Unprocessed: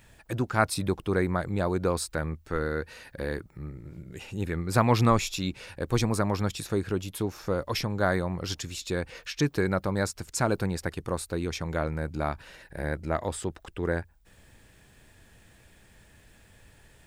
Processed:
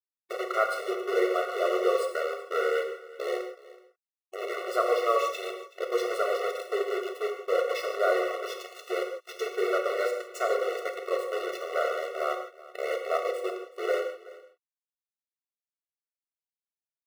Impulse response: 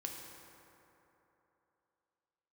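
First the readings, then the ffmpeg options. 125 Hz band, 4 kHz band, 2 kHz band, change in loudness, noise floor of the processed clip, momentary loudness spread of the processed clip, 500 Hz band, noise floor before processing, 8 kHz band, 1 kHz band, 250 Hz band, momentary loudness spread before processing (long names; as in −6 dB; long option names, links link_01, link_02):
below −40 dB, −2.5 dB, 0.0 dB, 0.0 dB, below −85 dBFS, 10 LU, +4.0 dB, −58 dBFS, −9.5 dB, +1.0 dB, −10.0 dB, 11 LU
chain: -filter_complex "[0:a]bandreject=frequency=55.97:width_type=h:width=4,bandreject=frequency=111.94:width_type=h:width=4,bandreject=frequency=167.91:width_type=h:width=4,bandreject=frequency=223.88:width_type=h:width=4,bandreject=frequency=279.85:width_type=h:width=4,bandreject=frequency=335.82:width_type=h:width=4,bandreject=frequency=391.79:width_type=h:width=4,bandreject=frequency=447.76:width_type=h:width=4,bandreject=frequency=503.73:width_type=h:width=4,bandreject=frequency=559.7:width_type=h:width=4,bandreject=frequency=615.67:width_type=h:width=4,bandreject=frequency=671.64:width_type=h:width=4,bandreject=frequency=727.61:width_type=h:width=4,bandreject=frequency=783.58:width_type=h:width=4,bandreject=frequency=839.55:width_type=h:width=4,bandreject=frequency=895.52:width_type=h:width=4,bandreject=frequency=951.49:width_type=h:width=4,bandreject=frequency=1007.46:width_type=h:width=4,bandreject=frequency=1063.43:width_type=h:width=4,bandreject=frequency=1119.4:width_type=h:width=4,bandreject=frequency=1175.37:width_type=h:width=4,bandreject=frequency=1231.34:width_type=h:width=4,bandreject=frequency=1287.31:width_type=h:width=4,bandreject=frequency=1343.28:width_type=h:width=4,bandreject=frequency=1399.25:width_type=h:width=4,bandreject=frequency=1455.22:width_type=h:width=4,bandreject=frequency=1511.19:width_type=h:width=4,bandreject=frequency=1567.16:width_type=h:width=4,bandreject=frequency=1623.13:width_type=h:width=4,bandreject=frequency=1679.1:width_type=h:width=4,bandreject=frequency=1735.07:width_type=h:width=4,bandreject=frequency=1791.04:width_type=h:width=4,bandreject=frequency=1847.01:width_type=h:width=4,bandreject=frequency=1902.98:width_type=h:width=4,acrusher=bits=4:mix=0:aa=0.000001,asplit=2[link_01][link_02];[link_02]alimiter=limit=-15.5dB:level=0:latency=1:release=426,volume=-1.5dB[link_03];[link_01][link_03]amix=inputs=2:normalize=0,bass=frequency=250:gain=3,treble=frequency=4000:gain=-15,aecho=1:1:376:0.106[link_04];[1:a]atrim=start_sample=2205,afade=type=out:start_time=0.22:duration=0.01,atrim=end_sample=10143[link_05];[link_04][link_05]afir=irnorm=-1:irlink=0,afftfilt=real='re*eq(mod(floor(b*sr/1024/370),2),1)':imag='im*eq(mod(floor(b*sr/1024/370),2),1)':win_size=1024:overlap=0.75,volume=1.5dB"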